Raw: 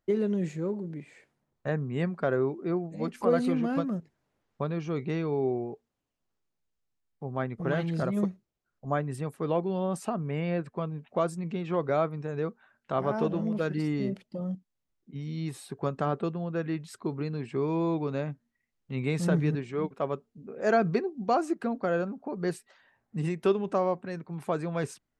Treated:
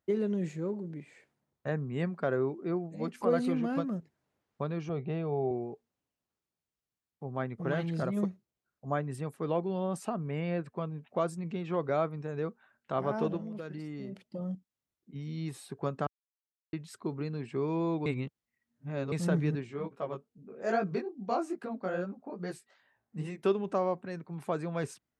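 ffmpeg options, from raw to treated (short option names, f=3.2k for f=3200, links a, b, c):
-filter_complex "[0:a]asettb=1/sr,asplit=3[a][b][c];[a]atrim=end=4.894[d];[b]atrim=start=4.89:end=5.51,asetpts=PTS-STARTPTS,afade=t=in:d=0.004:c=qsin,afade=t=out:st=0.616:d=0.004:c=qsin,highpass=100,equalizer=f=140:t=q:w=4:g=4,equalizer=f=290:t=q:w=4:g=-7,equalizer=f=700:t=q:w=4:g=9,equalizer=f=1k:t=q:w=4:g=-4,equalizer=f=1.5k:t=q:w=4:g=-5,equalizer=f=2.1k:t=q:w=4:g=-8,lowpass=f=3.3k:w=0.5412,lowpass=f=3.3k:w=1.3066[e];[c]atrim=start=5.506[f];[d][e]acrossfade=d=0.004:c1=hsin:c2=qsin[g];[g][f]acrossfade=d=0.004:c1=qsin:c2=hsin,asplit=3[h][i][j];[h]afade=t=out:st=13.36:d=0.02[k];[i]acompressor=threshold=-34dB:ratio=5:attack=3.2:release=140:knee=1:detection=peak,afade=t=in:st=13.36:d=0.02,afade=t=out:st=14.27:d=0.02[l];[j]afade=t=in:st=14.27:d=0.02[m];[k][l][m]amix=inputs=3:normalize=0,asplit=3[n][o][p];[n]afade=t=out:st=19.66:d=0.02[q];[o]flanger=delay=15:depth=6.5:speed=2.4,afade=t=in:st=19.66:d=0.02,afade=t=out:st=23.43:d=0.02[r];[p]afade=t=in:st=23.43:d=0.02[s];[q][r][s]amix=inputs=3:normalize=0,asplit=5[t][u][v][w][x];[t]atrim=end=16.07,asetpts=PTS-STARTPTS,afade=t=out:st=16.066:d=0.004:c=hsin[y];[u]atrim=start=16.07:end=16.73,asetpts=PTS-STARTPTS,volume=0[z];[v]atrim=start=16.73:end=18.062,asetpts=PTS-STARTPTS,afade=t=in:d=0.004:c=hsin[aa];[w]atrim=start=18.058:end=19.122,asetpts=PTS-STARTPTS,areverse[ab];[x]atrim=start=19.118[ac];[y][z][aa]concat=n=3:v=0:a=1[ad];[ad][ab]acrossfade=d=0.004:c1=hsin:c2=hsin[ae];[ae][ac]acrossfade=d=0.004:c1=hsin:c2=hsin,highpass=58,volume=-3dB"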